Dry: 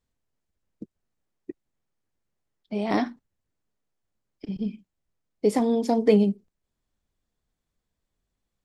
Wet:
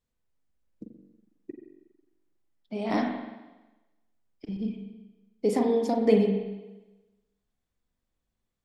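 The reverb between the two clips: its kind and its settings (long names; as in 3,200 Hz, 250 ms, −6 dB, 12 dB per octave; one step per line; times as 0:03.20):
spring reverb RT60 1.1 s, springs 41/45 ms, chirp 20 ms, DRR 2 dB
level −4 dB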